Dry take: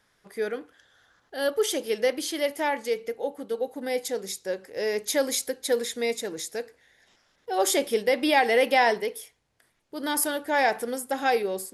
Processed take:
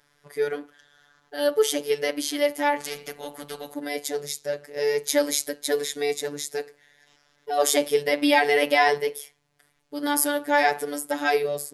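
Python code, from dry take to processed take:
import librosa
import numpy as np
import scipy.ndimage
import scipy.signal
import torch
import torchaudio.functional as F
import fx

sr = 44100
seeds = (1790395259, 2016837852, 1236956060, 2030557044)

y = fx.robotise(x, sr, hz=145.0)
y = fx.spectral_comp(y, sr, ratio=2.0, at=(2.8, 3.74))
y = y * librosa.db_to_amplitude(4.5)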